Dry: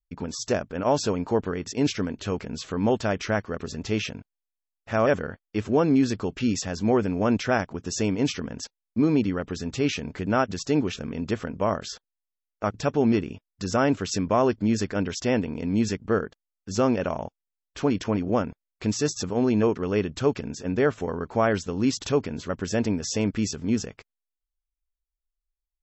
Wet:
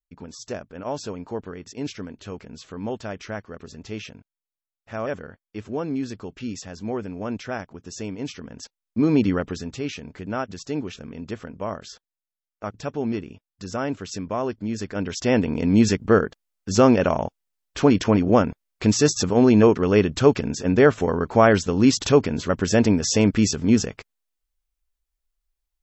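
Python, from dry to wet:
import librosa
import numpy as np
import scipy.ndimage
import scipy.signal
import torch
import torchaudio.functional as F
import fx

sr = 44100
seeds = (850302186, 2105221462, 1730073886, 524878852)

y = fx.gain(x, sr, db=fx.line((8.34, -7.0), (9.34, 5.5), (9.83, -5.0), (14.72, -5.0), (15.53, 7.0)))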